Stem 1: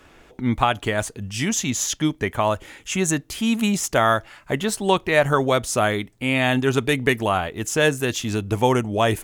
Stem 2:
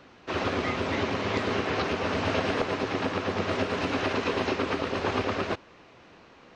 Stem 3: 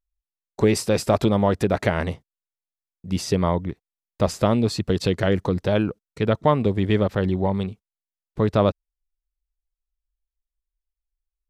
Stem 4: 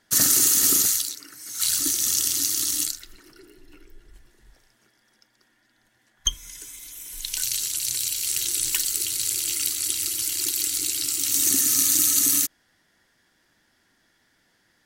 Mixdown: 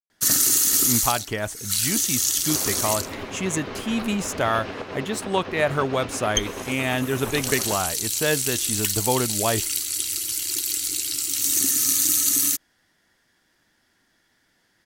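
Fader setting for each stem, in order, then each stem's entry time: −4.5 dB, −6.0 dB, muted, −0.5 dB; 0.45 s, 2.20 s, muted, 0.10 s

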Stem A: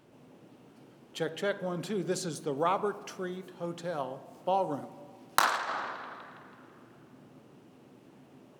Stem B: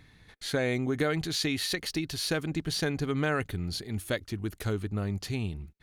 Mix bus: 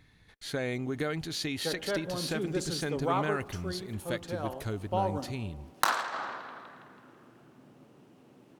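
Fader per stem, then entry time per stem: −1.5, −4.5 decibels; 0.45, 0.00 seconds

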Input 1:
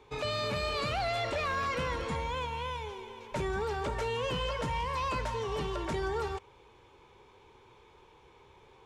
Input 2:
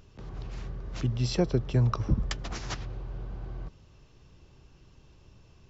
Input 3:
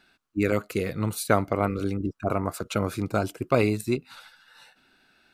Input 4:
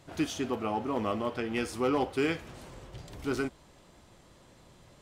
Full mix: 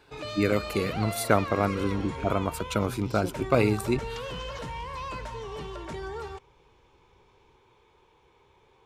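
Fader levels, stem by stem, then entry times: −3.5, −11.5, −0.5, −16.0 decibels; 0.00, 1.85, 0.00, 0.00 seconds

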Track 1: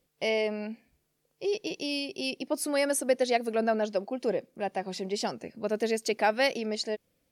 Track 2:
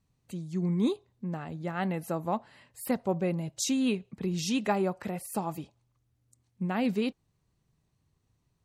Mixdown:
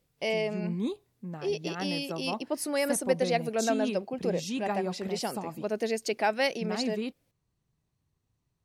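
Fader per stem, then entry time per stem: −1.5, −4.5 decibels; 0.00, 0.00 seconds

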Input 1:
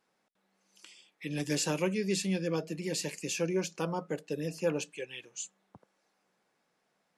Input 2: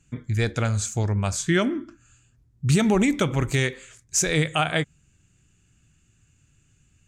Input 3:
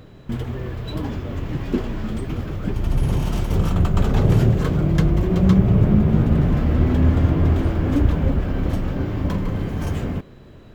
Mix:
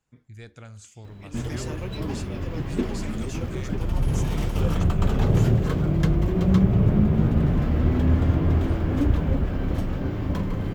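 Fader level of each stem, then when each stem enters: −7.5, −19.5, −3.5 decibels; 0.00, 0.00, 1.05 seconds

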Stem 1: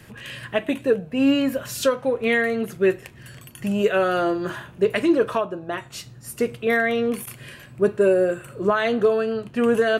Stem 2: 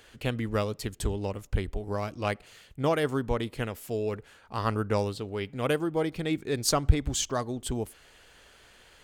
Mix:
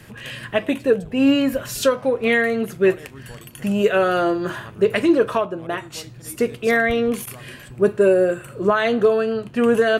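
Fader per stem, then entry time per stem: +2.5, −14.0 decibels; 0.00, 0.00 seconds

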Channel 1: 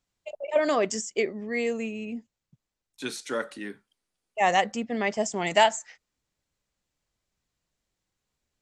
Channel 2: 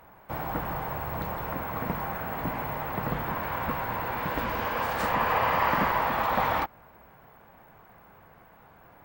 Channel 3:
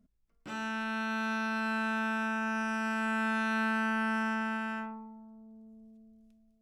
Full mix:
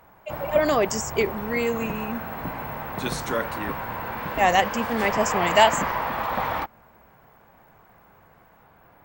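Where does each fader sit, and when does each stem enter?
+3.0, −0.5, −14.5 decibels; 0.00, 0.00, 0.80 seconds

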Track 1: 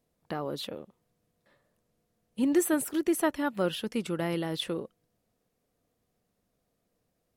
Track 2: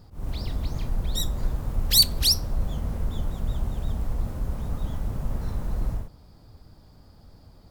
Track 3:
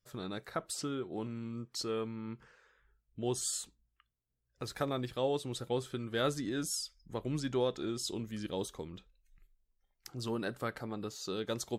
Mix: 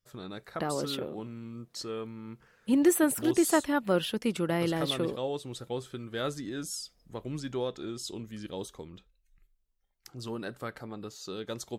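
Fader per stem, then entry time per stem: +2.0 dB, muted, −1.0 dB; 0.30 s, muted, 0.00 s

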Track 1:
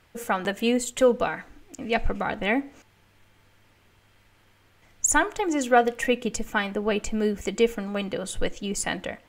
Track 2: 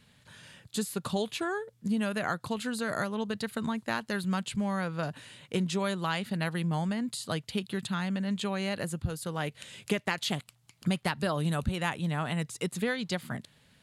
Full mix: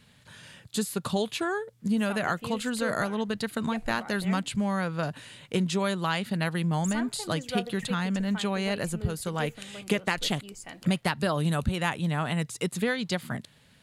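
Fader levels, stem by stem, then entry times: −15.5, +3.0 decibels; 1.80, 0.00 seconds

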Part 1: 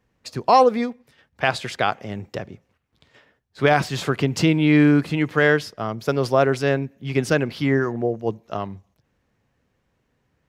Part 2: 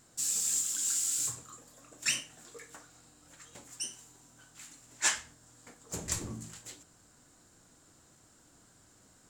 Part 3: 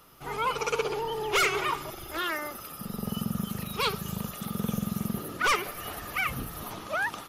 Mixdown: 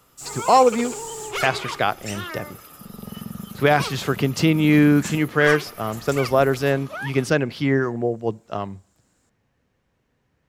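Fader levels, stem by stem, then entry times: 0.0, −5.5, −3.0 decibels; 0.00, 0.00, 0.00 seconds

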